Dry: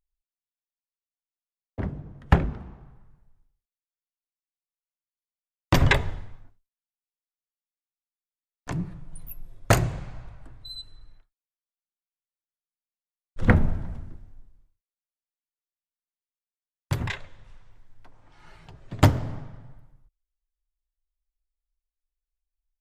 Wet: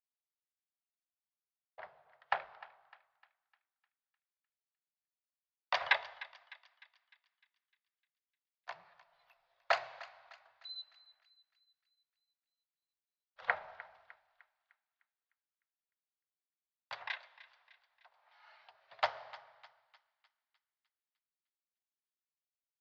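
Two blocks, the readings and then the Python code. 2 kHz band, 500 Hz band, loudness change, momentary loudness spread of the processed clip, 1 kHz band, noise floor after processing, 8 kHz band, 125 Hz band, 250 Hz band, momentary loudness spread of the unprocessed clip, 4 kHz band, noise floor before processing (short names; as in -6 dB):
-6.5 dB, -13.0 dB, -12.5 dB, 21 LU, -7.0 dB, under -85 dBFS, -24.5 dB, under -40 dB, under -40 dB, 22 LU, -7.5 dB, under -85 dBFS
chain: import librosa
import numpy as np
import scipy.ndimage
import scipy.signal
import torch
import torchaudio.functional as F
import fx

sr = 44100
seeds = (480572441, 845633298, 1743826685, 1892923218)

y = scipy.signal.sosfilt(scipy.signal.ellip(3, 1.0, 40, [670.0, 4600.0], 'bandpass', fs=sr, output='sos'), x)
y = fx.echo_thinned(y, sr, ms=303, feedback_pct=52, hz=920.0, wet_db=-17.0)
y = F.gain(torch.from_numpy(y), -6.5).numpy()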